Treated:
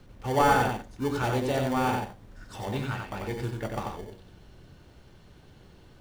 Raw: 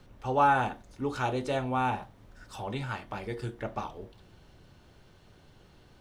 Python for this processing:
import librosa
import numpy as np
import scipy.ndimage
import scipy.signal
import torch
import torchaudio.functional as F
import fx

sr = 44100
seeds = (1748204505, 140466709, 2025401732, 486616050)

p1 = fx.sample_hold(x, sr, seeds[0], rate_hz=1300.0, jitter_pct=0)
p2 = x + (p1 * 10.0 ** (-6.5 / 20.0))
y = p2 + 10.0 ** (-4.0 / 20.0) * np.pad(p2, (int(91 * sr / 1000.0), 0))[:len(p2)]